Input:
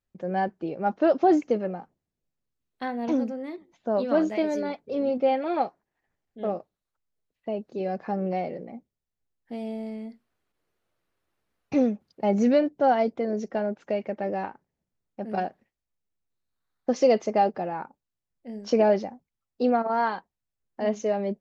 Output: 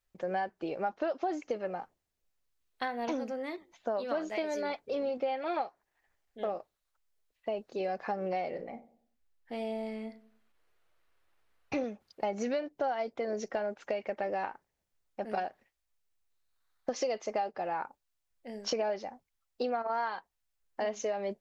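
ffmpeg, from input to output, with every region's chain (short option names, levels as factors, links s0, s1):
-filter_complex "[0:a]asettb=1/sr,asplit=3[s0][s1][s2];[s0]atrim=end=8.504[s3];[s1]atrim=start=8.5:end=11.84,asetpts=PTS-STARTPTS,afade=t=in:d=0.004:c=qsin,afade=t=out:st=3.336:d=0.004:c=qsin,bass=f=250:g=1,treble=f=4000:g=-5,asplit=2[s4][s5];[s5]adelay=36,volume=0.282[s6];[s4][s6]amix=inputs=2:normalize=0,atrim=end_sample=147294,asplit=2[s7][s8];[s8]adelay=96,lowpass=f=1100:p=1,volume=0.158,asplit=2[s9][s10];[s10]adelay=96,lowpass=f=1100:p=1,volume=0.41,asplit=2[s11][s12];[s12]adelay=96,lowpass=f=1100:p=1,volume=0.41,asplit=2[s13][s14];[s14]adelay=96,lowpass=f=1100:p=1,volume=0.41[s15];[s7][s9][s11][s13][s15]amix=inputs=5:normalize=0,atrim=end_sample=147294[s16];[s2]atrim=start=11.836[s17];[s3][s16]acrossfade=d=0.004:c1=hsin:c2=qsin[s18];[s18][s17]acrossfade=d=0.004:c1=qsin:c2=hsin,equalizer=f=180:w=0.53:g=-14,acompressor=threshold=0.0178:ratio=6,volume=1.78"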